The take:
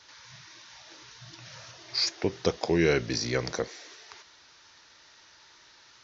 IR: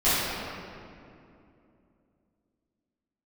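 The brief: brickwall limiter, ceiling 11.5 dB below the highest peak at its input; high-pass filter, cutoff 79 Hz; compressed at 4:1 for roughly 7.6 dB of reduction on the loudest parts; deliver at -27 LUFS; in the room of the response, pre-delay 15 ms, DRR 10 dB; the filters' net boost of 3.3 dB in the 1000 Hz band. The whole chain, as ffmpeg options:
-filter_complex "[0:a]highpass=79,equalizer=f=1k:t=o:g=4.5,acompressor=threshold=-27dB:ratio=4,alimiter=level_in=2dB:limit=-24dB:level=0:latency=1,volume=-2dB,asplit=2[a][b];[1:a]atrim=start_sample=2205,adelay=15[c];[b][c]afir=irnorm=-1:irlink=0,volume=-27.5dB[d];[a][d]amix=inputs=2:normalize=0,volume=12.5dB"

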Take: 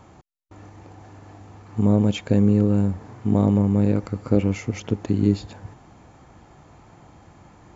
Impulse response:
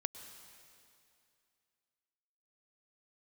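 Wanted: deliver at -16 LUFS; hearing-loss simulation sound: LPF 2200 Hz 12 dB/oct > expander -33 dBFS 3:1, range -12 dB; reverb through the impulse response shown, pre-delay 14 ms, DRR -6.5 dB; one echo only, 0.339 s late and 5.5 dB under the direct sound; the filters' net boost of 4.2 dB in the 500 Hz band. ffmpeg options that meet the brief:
-filter_complex "[0:a]equalizer=f=500:t=o:g=5,aecho=1:1:339:0.531,asplit=2[a][b];[1:a]atrim=start_sample=2205,adelay=14[c];[b][c]afir=irnorm=-1:irlink=0,volume=7dB[d];[a][d]amix=inputs=2:normalize=0,lowpass=2.2k,agate=range=-12dB:threshold=-33dB:ratio=3,volume=-3.5dB"

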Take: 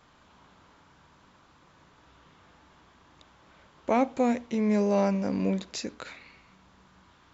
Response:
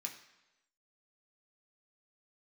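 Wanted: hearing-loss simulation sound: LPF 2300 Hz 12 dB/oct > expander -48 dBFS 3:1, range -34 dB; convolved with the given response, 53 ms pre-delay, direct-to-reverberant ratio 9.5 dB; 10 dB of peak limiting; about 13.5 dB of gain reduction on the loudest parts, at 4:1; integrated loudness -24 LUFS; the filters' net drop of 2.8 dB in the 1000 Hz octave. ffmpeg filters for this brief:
-filter_complex "[0:a]equalizer=f=1k:t=o:g=-4,acompressor=threshold=-38dB:ratio=4,alimiter=level_in=10dB:limit=-24dB:level=0:latency=1,volume=-10dB,asplit=2[a][b];[1:a]atrim=start_sample=2205,adelay=53[c];[b][c]afir=irnorm=-1:irlink=0,volume=-7.5dB[d];[a][d]amix=inputs=2:normalize=0,lowpass=2.3k,agate=range=-34dB:threshold=-48dB:ratio=3,volume=19dB"

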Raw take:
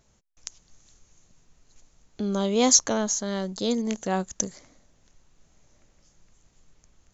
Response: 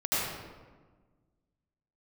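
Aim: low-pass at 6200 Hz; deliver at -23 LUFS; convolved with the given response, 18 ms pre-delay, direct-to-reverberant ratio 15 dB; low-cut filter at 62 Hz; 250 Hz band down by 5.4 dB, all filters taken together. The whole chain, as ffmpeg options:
-filter_complex "[0:a]highpass=62,lowpass=6.2k,equalizer=f=250:t=o:g=-6.5,asplit=2[a][b];[1:a]atrim=start_sample=2205,adelay=18[c];[b][c]afir=irnorm=-1:irlink=0,volume=-25.5dB[d];[a][d]amix=inputs=2:normalize=0,volume=4dB"

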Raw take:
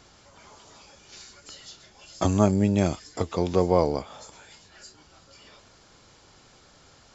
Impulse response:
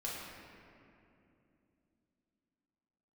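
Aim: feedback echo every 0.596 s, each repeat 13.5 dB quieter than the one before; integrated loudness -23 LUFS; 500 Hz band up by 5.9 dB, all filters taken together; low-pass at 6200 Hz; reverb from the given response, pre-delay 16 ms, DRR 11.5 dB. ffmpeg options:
-filter_complex "[0:a]lowpass=6.2k,equalizer=f=500:t=o:g=7,aecho=1:1:596|1192:0.211|0.0444,asplit=2[a][b];[1:a]atrim=start_sample=2205,adelay=16[c];[b][c]afir=irnorm=-1:irlink=0,volume=-13.5dB[d];[a][d]amix=inputs=2:normalize=0,volume=-2dB"

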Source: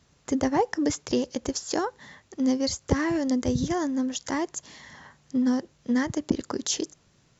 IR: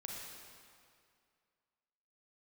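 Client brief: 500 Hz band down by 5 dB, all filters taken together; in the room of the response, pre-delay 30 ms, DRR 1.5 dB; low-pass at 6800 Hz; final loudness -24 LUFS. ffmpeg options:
-filter_complex "[0:a]lowpass=6.8k,equalizer=f=500:t=o:g=-6.5,asplit=2[a][b];[1:a]atrim=start_sample=2205,adelay=30[c];[b][c]afir=irnorm=-1:irlink=0,volume=0dB[d];[a][d]amix=inputs=2:normalize=0,volume=3.5dB"

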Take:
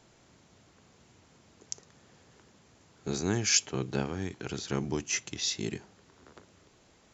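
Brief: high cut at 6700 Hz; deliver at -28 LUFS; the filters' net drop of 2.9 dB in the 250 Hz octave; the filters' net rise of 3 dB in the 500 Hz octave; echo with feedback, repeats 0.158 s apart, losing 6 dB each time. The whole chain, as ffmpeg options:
-af "lowpass=6.7k,equalizer=f=250:t=o:g=-7,equalizer=f=500:t=o:g=7,aecho=1:1:158|316|474|632|790|948:0.501|0.251|0.125|0.0626|0.0313|0.0157,volume=3.5dB"

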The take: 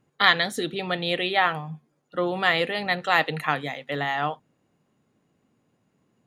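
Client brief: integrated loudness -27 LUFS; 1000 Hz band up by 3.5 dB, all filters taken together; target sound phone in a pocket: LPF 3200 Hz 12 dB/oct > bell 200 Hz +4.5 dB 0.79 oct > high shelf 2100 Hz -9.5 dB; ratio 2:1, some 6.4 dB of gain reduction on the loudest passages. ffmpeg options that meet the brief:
-af "equalizer=f=1k:t=o:g=7,acompressor=threshold=-21dB:ratio=2,lowpass=3.2k,equalizer=f=200:t=o:w=0.79:g=4.5,highshelf=f=2.1k:g=-9.5,volume=0.5dB"

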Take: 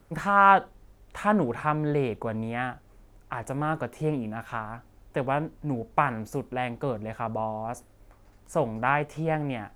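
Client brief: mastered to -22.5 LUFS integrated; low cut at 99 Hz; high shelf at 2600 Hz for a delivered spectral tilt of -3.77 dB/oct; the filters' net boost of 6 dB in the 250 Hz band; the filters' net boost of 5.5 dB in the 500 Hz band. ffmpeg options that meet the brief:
-af "highpass=99,equalizer=f=250:t=o:g=6.5,equalizer=f=500:t=o:g=5.5,highshelf=f=2.6k:g=-6,volume=2dB"

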